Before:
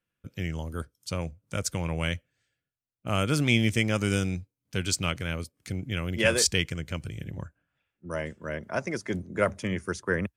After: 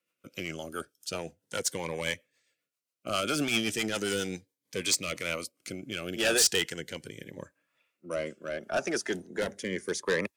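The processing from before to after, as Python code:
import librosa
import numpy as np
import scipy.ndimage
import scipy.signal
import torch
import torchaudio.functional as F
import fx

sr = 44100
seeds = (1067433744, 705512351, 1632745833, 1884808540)

y = scipy.signal.sosfilt(scipy.signal.butter(2, 410.0, 'highpass', fs=sr, output='sos'), x)
y = 10.0 ** (-26.5 / 20.0) * np.tanh(y / 10.0 ** (-26.5 / 20.0))
y = fx.rotary_switch(y, sr, hz=7.5, then_hz=0.8, switch_at_s=4.36)
y = fx.notch_cascade(y, sr, direction='rising', hz=0.38)
y = F.gain(torch.from_numpy(y), 8.5).numpy()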